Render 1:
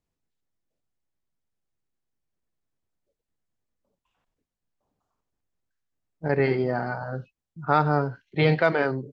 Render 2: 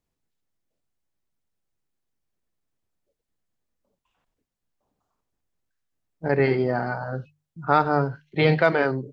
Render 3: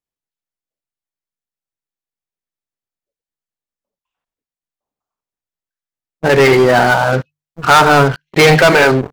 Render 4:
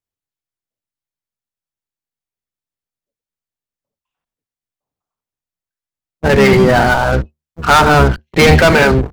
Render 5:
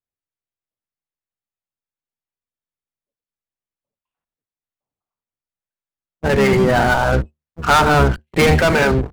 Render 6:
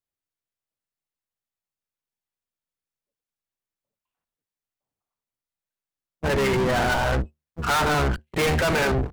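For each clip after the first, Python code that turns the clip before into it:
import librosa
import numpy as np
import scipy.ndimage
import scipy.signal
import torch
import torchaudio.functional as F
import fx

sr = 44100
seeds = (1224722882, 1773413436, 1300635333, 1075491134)

y1 = fx.hum_notches(x, sr, base_hz=50, count=3)
y1 = y1 * 10.0 ** (2.0 / 20.0)
y2 = fx.low_shelf(y1, sr, hz=400.0, db=-9.5)
y2 = fx.leveller(y2, sr, passes=5)
y2 = fx.rider(y2, sr, range_db=10, speed_s=2.0)
y2 = y2 * 10.0 ** (4.0 / 20.0)
y3 = fx.octave_divider(y2, sr, octaves=1, level_db=2.0)
y3 = y3 * 10.0 ** (-1.0 / 20.0)
y4 = scipy.ndimage.median_filter(y3, 9, mode='constant')
y4 = fx.rider(y4, sr, range_db=10, speed_s=0.5)
y4 = y4 * 10.0 ** (-4.0 / 20.0)
y5 = 10.0 ** (-19.5 / 20.0) * np.tanh(y4 / 10.0 ** (-19.5 / 20.0))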